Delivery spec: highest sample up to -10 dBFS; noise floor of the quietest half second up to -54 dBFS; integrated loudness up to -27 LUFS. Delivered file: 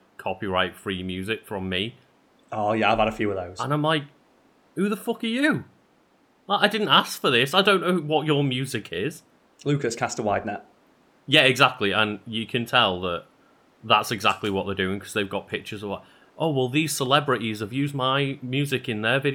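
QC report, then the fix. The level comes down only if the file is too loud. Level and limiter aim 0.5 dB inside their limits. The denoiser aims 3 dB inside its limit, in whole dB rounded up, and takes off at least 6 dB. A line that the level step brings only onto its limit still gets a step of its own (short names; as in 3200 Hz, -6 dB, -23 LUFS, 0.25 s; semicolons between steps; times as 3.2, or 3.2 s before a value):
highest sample -3.5 dBFS: fail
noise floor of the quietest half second -61 dBFS: OK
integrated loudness -23.5 LUFS: fail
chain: gain -4 dB; limiter -10.5 dBFS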